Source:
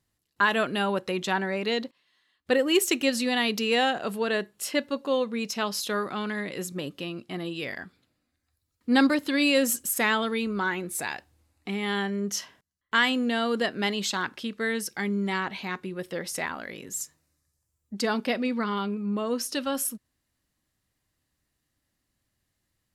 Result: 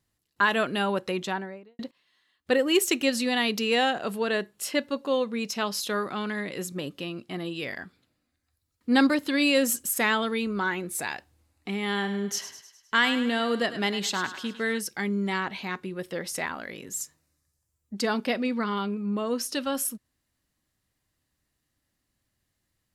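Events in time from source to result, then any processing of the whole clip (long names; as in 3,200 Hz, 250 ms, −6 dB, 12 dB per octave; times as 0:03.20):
0:01.09–0:01.79: fade out and dull
0:11.86–0:14.78: feedback echo with a high-pass in the loop 103 ms, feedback 54%, high-pass 580 Hz, level −11 dB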